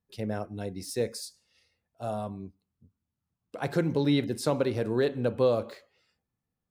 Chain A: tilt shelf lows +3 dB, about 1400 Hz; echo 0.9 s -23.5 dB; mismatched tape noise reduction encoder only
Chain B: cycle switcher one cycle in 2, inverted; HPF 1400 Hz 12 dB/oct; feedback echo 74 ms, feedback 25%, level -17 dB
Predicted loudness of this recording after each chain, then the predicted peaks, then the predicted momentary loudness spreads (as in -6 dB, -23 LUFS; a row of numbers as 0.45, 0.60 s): -27.0, -35.5 LUFS; -12.0, -9.0 dBFS; 21, 16 LU